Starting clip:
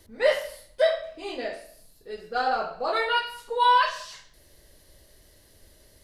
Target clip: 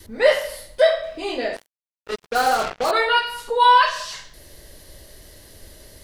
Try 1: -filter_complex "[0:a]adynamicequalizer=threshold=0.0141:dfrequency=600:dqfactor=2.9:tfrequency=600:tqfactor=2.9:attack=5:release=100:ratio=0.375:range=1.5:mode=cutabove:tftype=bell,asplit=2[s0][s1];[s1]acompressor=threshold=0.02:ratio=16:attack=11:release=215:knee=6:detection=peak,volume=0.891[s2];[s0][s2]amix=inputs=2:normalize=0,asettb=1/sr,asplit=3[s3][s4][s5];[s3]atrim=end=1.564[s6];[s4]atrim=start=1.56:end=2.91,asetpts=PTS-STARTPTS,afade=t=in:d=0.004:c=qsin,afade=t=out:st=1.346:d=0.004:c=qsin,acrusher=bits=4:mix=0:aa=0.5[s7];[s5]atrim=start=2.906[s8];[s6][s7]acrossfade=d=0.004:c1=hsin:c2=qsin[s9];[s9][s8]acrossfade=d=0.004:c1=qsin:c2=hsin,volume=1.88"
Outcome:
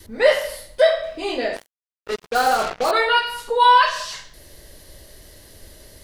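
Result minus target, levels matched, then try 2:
compression: peak gain reduction -6 dB
-filter_complex "[0:a]adynamicequalizer=threshold=0.0141:dfrequency=600:dqfactor=2.9:tfrequency=600:tqfactor=2.9:attack=5:release=100:ratio=0.375:range=1.5:mode=cutabove:tftype=bell,asplit=2[s0][s1];[s1]acompressor=threshold=0.00944:ratio=16:attack=11:release=215:knee=6:detection=peak,volume=0.891[s2];[s0][s2]amix=inputs=2:normalize=0,asettb=1/sr,asplit=3[s3][s4][s5];[s3]atrim=end=1.564[s6];[s4]atrim=start=1.56:end=2.91,asetpts=PTS-STARTPTS,afade=t=in:d=0.004:c=qsin,afade=t=out:st=1.346:d=0.004:c=qsin,acrusher=bits=4:mix=0:aa=0.5[s7];[s5]atrim=start=2.906[s8];[s6][s7]acrossfade=d=0.004:c1=hsin:c2=qsin[s9];[s9][s8]acrossfade=d=0.004:c1=qsin:c2=hsin,volume=1.88"

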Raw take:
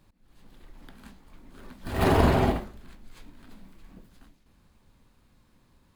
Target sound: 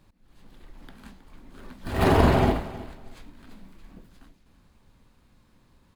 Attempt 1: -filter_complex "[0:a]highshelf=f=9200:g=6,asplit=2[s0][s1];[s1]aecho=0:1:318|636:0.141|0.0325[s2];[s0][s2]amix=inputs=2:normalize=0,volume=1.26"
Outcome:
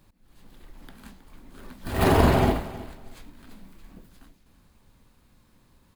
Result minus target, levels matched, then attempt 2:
8 kHz band +4.5 dB
-filter_complex "[0:a]highshelf=f=9200:g=-4,asplit=2[s0][s1];[s1]aecho=0:1:318|636:0.141|0.0325[s2];[s0][s2]amix=inputs=2:normalize=0,volume=1.26"

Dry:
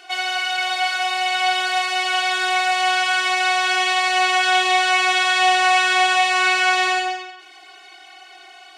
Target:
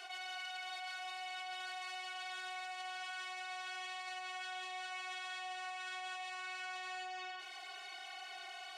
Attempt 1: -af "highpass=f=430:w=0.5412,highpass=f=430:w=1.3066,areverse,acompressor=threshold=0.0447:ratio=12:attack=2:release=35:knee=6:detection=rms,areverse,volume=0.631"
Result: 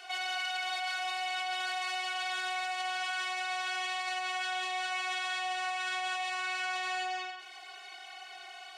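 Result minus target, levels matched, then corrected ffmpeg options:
compression: peak gain reduction -10 dB
-af "highpass=f=430:w=0.5412,highpass=f=430:w=1.3066,areverse,acompressor=threshold=0.0126:ratio=12:attack=2:release=35:knee=6:detection=rms,areverse,volume=0.631"

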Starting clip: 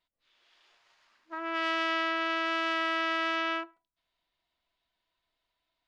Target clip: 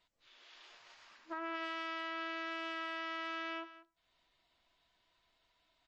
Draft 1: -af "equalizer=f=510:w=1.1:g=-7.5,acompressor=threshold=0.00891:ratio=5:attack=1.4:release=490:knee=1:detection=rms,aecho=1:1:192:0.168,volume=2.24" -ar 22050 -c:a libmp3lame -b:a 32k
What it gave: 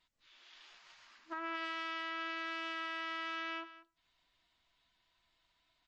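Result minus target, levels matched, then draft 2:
500 Hz band -4.0 dB
-af "acompressor=threshold=0.00891:ratio=5:attack=1.4:release=490:knee=1:detection=rms,aecho=1:1:192:0.168,volume=2.24" -ar 22050 -c:a libmp3lame -b:a 32k

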